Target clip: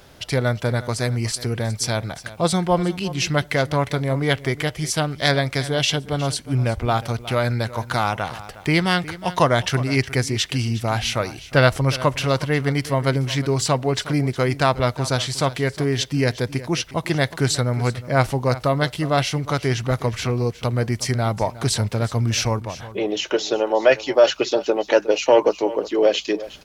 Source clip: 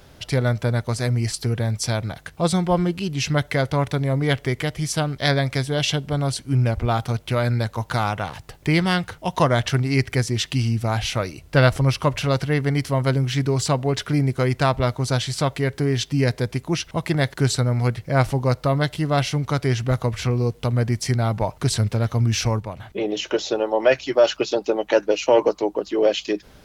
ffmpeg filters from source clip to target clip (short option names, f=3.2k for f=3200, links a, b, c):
-af "lowshelf=f=240:g=-5.5,aecho=1:1:362:0.15,volume=2.5dB"